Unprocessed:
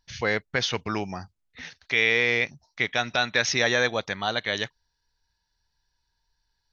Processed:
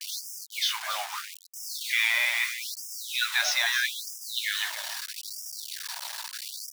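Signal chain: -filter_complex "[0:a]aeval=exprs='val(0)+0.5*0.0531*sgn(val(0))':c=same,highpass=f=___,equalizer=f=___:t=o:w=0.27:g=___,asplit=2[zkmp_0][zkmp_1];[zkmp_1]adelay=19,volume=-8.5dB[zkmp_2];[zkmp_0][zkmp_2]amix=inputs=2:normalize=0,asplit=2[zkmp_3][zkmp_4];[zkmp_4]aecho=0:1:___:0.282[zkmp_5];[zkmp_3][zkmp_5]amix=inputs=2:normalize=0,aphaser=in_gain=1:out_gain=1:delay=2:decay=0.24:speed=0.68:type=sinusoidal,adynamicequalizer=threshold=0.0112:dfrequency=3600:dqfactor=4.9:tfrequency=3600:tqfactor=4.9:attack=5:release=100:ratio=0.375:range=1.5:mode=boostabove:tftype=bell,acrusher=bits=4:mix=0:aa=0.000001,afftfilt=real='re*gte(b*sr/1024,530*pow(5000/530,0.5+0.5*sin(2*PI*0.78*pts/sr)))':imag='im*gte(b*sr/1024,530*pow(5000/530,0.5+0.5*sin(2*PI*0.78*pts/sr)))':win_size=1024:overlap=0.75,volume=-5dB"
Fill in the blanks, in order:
46, 71, 6, 281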